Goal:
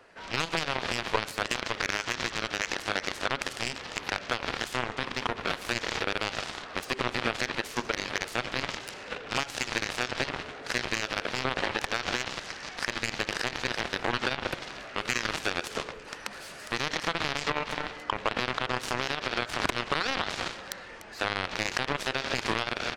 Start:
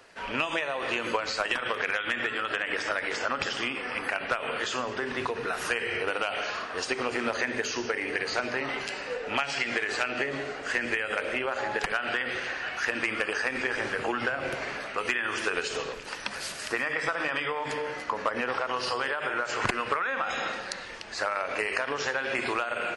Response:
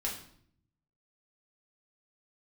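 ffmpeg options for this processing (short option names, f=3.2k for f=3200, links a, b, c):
-af "highshelf=f=3.3k:g=-9.5,alimiter=limit=-22dB:level=0:latency=1:release=50,aeval=exprs='0.0794*(cos(1*acos(clip(val(0)/0.0794,-1,1)))-cos(1*PI/2))+0.0316*(cos(3*acos(clip(val(0)/0.0794,-1,1)))-cos(3*PI/2))+0.00224*(cos(7*acos(clip(val(0)/0.0794,-1,1)))-cos(7*PI/2))':c=same,volume=8dB"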